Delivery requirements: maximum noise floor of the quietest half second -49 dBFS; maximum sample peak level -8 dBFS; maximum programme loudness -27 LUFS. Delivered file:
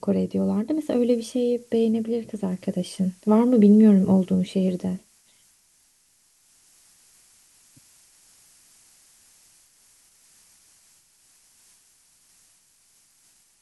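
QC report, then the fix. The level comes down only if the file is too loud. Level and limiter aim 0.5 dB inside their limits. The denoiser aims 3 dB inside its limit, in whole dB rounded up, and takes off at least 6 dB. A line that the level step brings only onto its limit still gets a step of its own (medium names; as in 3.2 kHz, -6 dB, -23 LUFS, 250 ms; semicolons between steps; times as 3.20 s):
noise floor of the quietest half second -62 dBFS: pass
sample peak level -6.0 dBFS: fail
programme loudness -21.5 LUFS: fail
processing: trim -6 dB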